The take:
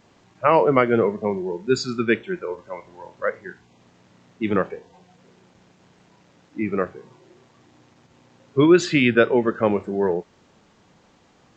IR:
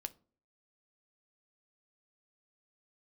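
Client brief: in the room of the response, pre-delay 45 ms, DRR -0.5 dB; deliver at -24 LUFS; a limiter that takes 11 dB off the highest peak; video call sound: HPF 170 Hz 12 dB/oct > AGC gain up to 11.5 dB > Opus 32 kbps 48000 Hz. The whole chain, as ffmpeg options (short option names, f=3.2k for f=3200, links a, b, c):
-filter_complex "[0:a]alimiter=limit=-13dB:level=0:latency=1,asplit=2[a][b];[1:a]atrim=start_sample=2205,adelay=45[c];[b][c]afir=irnorm=-1:irlink=0,volume=3.5dB[d];[a][d]amix=inputs=2:normalize=0,highpass=170,dynaudnorm=m=11.5dB,volume=-1.5dB" -ar 48000 -c:a libopus -b:a 32k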